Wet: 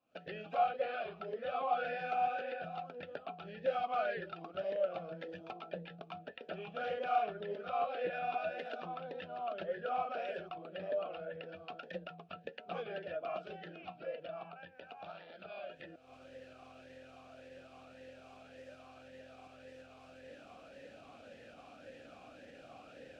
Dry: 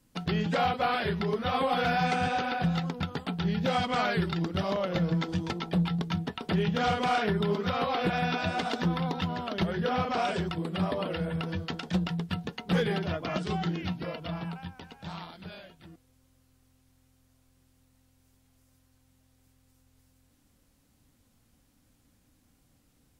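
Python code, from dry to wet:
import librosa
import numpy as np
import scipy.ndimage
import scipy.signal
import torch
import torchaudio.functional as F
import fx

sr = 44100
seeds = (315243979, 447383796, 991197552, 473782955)

y = fx.recorder_agc(x, sr, target_db=-27.0, rise_db_per_s=70.0, max_gain_db=30)
y = fx.air_absorb(y, sr, metres=57.0)
y = fx.vowel_sweep(y, sr, vowels='a-e', hz=1.8)
y = F.gain(torch.from_numpy(y), 1.5).numpy()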